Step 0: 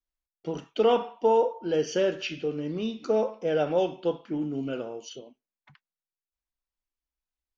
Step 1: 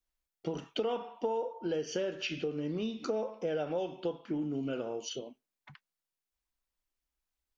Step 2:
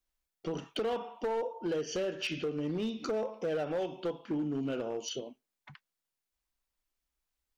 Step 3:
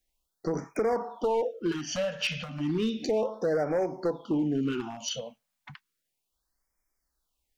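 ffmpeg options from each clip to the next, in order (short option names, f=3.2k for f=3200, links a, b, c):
-af "acompressor=threshold=-35dB:ratio=5,volume=3dB"
-af "asoftclip=type=hard:threshold=-29.5dB,volume=1.5dB"
-af "afftfilt=real='re*(1-between(b*sr/1024,320*pow(3500/320,0.5+0.5*sin(2*PI*0.33*pts/sr))/1.41,320*pow(3500/320,0.5+0.5*sin(2*PI*0.33*pts/sr))*1.41))':imag='im*(1-between(b*sr/1024,320*pow(3500/320,0.5+0.5*sin(2*PI*0.33*pts/sr))/1.41,320*pow(3500/320,0.5+0.5*sin(2*PI*0.33*pts/sr))*1.41))':win_size=1024:overlap=0.75,volume=6dB"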